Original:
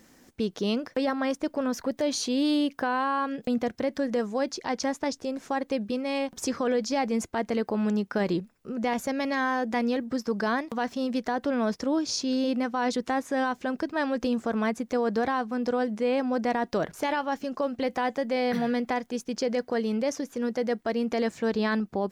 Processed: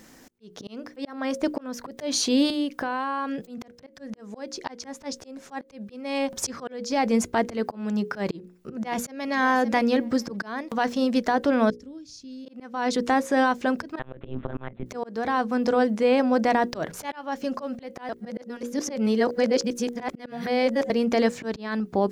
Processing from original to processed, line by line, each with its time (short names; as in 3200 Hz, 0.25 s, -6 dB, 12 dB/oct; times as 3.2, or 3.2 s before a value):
2.5–3.87 compressor 3:1, threshold -32 dBFS
8.34–9.22 echo throw 0.57 s, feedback 20%, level -17 dB
11.7–12.46 passive tone stack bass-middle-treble 10-0-1
13.99–14.86 monotone LPC vocoder at 8 kHz 130 Hz
18.09–20.9 reverse
whole clip: auto swell 0.161 s; notches 60/120/180/240/300/360/420/480/540 Hz; auto swell 0.424 s; gain +6 dB